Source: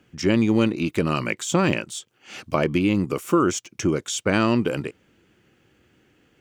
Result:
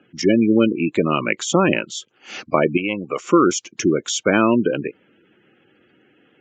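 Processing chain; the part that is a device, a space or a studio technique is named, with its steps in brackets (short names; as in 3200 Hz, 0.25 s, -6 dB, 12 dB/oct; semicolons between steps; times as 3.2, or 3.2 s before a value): 2.77–3.2 resonant low shelf 450 Hz -8 dB, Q 1.5; spectral gate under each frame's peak -20 dB strong; Bluetooth headset (HPF 200 Hz 12 dB/oct; downsampling 16000 Hz; gain +5.5 dB; SBC 64 kbps 16000 Hz)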